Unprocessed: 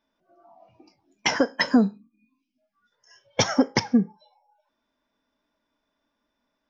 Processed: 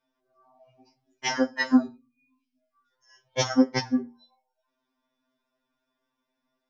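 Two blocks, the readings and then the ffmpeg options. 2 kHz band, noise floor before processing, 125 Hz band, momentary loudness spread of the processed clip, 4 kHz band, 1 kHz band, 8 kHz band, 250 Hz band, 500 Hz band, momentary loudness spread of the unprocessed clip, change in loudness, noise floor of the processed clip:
-3.5 dB, -79 dBFS, -5.0 dB, 12 LU, -4.5 dB, -3.5 dB, no reading, -1.5 dB, -3.0 dB, 7 LU, -2.0 dB, -82 dBFS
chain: -af "bandreject=f=60:t=h:w=6,bandreject=f=120:t=h:w=6,bandreject=f=180:t=h:w=6,bandreject=f=240:t=h:w=6,afftfilt=real='re*2.45*eq(mod(b,6),0)':imag='im*2.45*eq(mod(b,6),0)':win_size=2048:overlap=0.75,volume=0.841"

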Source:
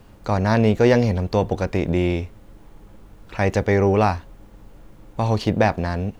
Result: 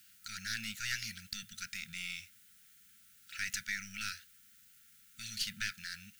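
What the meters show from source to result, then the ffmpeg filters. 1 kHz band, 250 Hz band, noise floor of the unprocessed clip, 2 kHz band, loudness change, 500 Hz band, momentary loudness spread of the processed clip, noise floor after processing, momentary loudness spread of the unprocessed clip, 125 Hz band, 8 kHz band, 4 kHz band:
-29.5 dB, -33.0 dB, -47 dBFS, -9.5 dB, -19.5 dB, under -40 dB, 22 LU, -63 dBFS, 11 LU, -33.5 dB, no reading, -3.5 dB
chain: -af "aderivative,aeval=exprs='(tanh(25.1*val(0)+0.45)-tanh(0.45))/25.1':c=same,afftfilt=real='re*(1-between(b*sr/4096,230,1300))':imag='im*(1-between(b*sr/4096,230,1300))':win_size=4096:overlap=0.75,volume=1.78"

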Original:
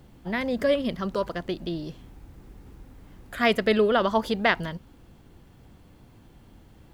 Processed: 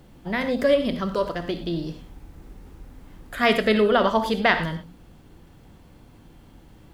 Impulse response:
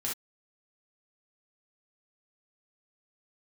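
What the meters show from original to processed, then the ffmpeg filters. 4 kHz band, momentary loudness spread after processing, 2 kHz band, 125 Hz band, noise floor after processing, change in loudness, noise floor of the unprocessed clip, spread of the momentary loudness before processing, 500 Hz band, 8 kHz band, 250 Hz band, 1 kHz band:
+3.0 dB, 13 LU, +3.0 dB, +3.5 dB, -51 dBFS, +3.0 dB, -53 dBFS, 14 LU, +2.5 dB, no reading, +3.0 dB, +3.5 dB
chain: -filter_complex "[0:a]bandreject=f=60:t=h:w=6,bandreject=f=120:t=h:w=6,bandreject=f=180:t=h:w=6,asplit=2[s0][s1];[1:a]atrim=start_sample=2205,asetrate=29106,aresample=44100[s2];[s1][s2]afir=irnorm=-1:irlink=0,volume=0.299[s3];[s0][s3]amix=inputs=2:normalize=0"

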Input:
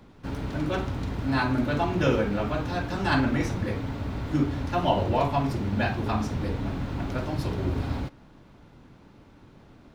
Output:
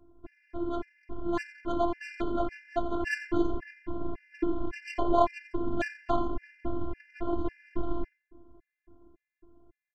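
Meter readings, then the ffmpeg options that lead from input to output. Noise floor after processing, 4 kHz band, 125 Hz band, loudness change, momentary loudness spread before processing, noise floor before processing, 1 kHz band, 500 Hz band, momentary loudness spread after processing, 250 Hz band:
under -85 dBFS, -12.0 dB, -17.0 dB, -5.5 dB, 8 LU, -53 dBFS, -3.5 dB, -3.0 dB, 10 LU, -5.5 dB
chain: -filter_complex "[0:a]adynamicsmooth=sensitivity=1.5:basefreq=650,afftfilt=real='hypot(re,im)*cos(PI*b)':imag='0':win_size=512:overlap=0.75,asplit=2[s0][s1];[s1]adelay=88,lowpass=f=4800:p=1,volume=0.299,asplit=2[s2][s3];[s3]adelay=88,lowpass=f=4800:p=1,volume=0.25,asplit=2[s4][s5];[s5]adelay=88,lowpass=f=4800:p=1,volume=0.25[s6];[s2][s4][s6]amix=inputs=3:normalize=0[s7];[s0][s7]amix=inputs=2:normalize=0,dynaudnorm=f=300:g=13:m=1.88,afftfilt=real='re*gt(sin(2*PI*1.8*pts/sr)*(1-2*mod(floor(b*sr/1024/1500),2)),0)':imag='im*gt(sin(2*PI*1.8*pts/sr)*(1-2*mod(floor(b*sr/1024/1500),2)),0)':win_size=1024:overlap=0.75"

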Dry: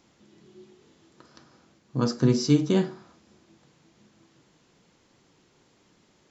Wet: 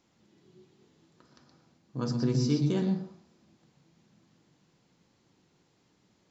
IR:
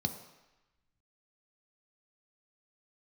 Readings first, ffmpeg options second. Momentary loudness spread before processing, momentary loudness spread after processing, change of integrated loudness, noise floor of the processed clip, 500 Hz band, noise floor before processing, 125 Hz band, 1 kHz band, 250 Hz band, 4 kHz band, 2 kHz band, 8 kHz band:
11 LU, 13 LU, -5.0 dB, -70 dBFS, -7.0 dB, -64 dBFS, -2.5 dB, -7.0 dB, -5.0 dB, -6.5 dB, -7.5 dB, no reading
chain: -filter_complex "[0:a]asplit=2[s0][s1];[1:a]atrim=start_sample=2205,afade=t=out:st=0.28:d=0.01,atrim=end_sample=12789,adelay=121[s2];[s1][s2]afir=irnorm=-1:irlink=0,volume=0.299[s3];[s0][s3]amix=inputs=2:normalize=0,volume=0.398"

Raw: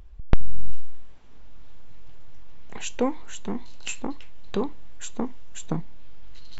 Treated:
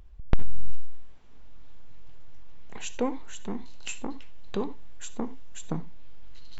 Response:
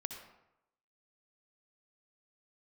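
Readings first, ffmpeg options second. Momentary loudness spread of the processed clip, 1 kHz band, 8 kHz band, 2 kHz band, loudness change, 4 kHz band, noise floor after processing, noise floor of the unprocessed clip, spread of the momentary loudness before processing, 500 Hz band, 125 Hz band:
17 LU, -3.5 dB, no reading, -3.5 dB, -3.5 dB, -3.5 dB, -40 dBFS, -37 dBFS, 17 LU, -3.5 dB, -3.5 dB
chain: -filter_complex "[0:a]asplit=2[s0][s1];[1:a]atrim=start_sample=2205,atrim=end_sample=4410[s2];[s1][s2]afir=irnorm=-1:irlink=0,volume=0.841[s3];[s0][s3]amix=inputs=2:normalize=0,volume=0.398"

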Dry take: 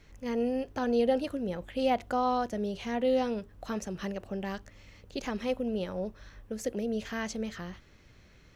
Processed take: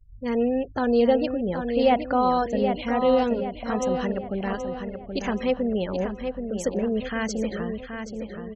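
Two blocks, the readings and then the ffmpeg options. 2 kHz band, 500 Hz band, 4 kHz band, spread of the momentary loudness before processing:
+7.0 dB, +7.5 dB, +5.5 dB, 11 LU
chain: -filter_complex "[0:a]afftfilt=real='re*gte(hypot(re,im),0.00794)':imag='im*gte(hypot(re,im),0.00794)':win_size=1024:overlap=0.75,acontrast=67,asplit=2[s0][s1];[s1]adelay=776,lowpass=f=3700:p=1,volume=0.473,asplit=2[s2][s3];[s3]adelay=776,lowpass=f=3700:p=1,volume=0.49,asplit=2[s4][s5];[s5]adelay=776,lowpass=f=3700:p=1,volume=0.49,asplit=2[s6][s7];[s7]adelay=776,lowpass=f=3700:p=1,volume=0.49,asplit=2[s8][s9];[s9]adelay=776,lowpass=f=3700:p=1,volume=0.49,asplit=2[s10][s11];[s11]adelay=776,lowpass=f=3700:p=1,volume=0.49[s12];[s0][s2][s4][s6][s8][s10][s12]amix=inputs=7:normalize=0"

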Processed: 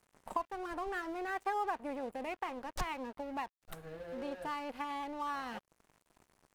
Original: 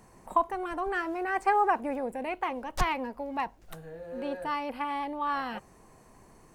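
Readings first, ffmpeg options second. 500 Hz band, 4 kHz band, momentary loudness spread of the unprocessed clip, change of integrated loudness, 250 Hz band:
-8.0 dB, -6.0 dB, 12 LU, -9.0 dB, -7.0 dB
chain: -af "acompressor=threshold=0.00891:ratio=2,aeval=exprs='sgn(val(0))*max(abs(val(0))-0.00266,0)':c=same,volume=1.12"

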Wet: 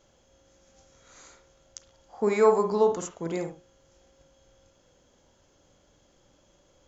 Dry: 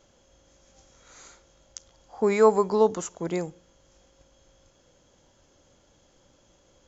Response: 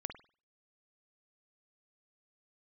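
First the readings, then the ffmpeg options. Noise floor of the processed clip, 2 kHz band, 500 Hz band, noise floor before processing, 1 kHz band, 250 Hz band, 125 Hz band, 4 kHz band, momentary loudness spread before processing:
-64 dBFS, -1.5 dB, -1.0 dB, -63 dBFS, -1.5 dB, -2.5 dB, -2.5 dB, -2.5 dB, 13 LU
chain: -filter_complex "[1:a]atrim=start_sample=2205,afade=t=out:st=0.18:d=0.01,atrim=end_sample=8379[s0];[0:a][s0]afir=irnorm=-1:irlink=0"

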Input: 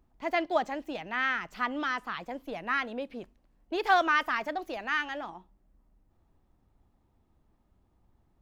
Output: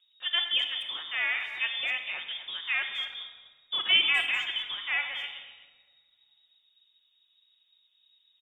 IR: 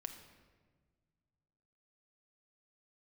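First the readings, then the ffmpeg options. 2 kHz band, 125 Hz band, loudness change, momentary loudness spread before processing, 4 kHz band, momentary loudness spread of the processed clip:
+2.0 dB, no reading, +2.5 dB, 13 LU, +15.0 dB, 13 LU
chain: -filter_complex "[0:a]lowpass=f=3200:t=q:w=0.5098,lowpass=f=3200:t=q:w=0.6013,lowpass=f=3200:t=q:w=0.9,lowpass=f=3200:t=q:w=2.563,afreqshift=-3800,asplit=2[s0][s1];[s1]adelay=250,highpass=300,lowpass=3400,asoftclip=type=hard:threshold=0.0891,volume=0.251[s2];[s0][s2]amix=inputs=2:normalize=0[s3];[1:a]atrim=start_sample=2205[s4];[s3][s4]afir=irnorm=-1:irlink=0,volume=1.5"

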